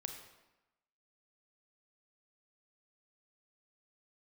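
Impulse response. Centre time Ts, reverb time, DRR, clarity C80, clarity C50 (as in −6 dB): 27 ms, 1.0 s, 4.5 dB, 8.5 dB, 6.5 dB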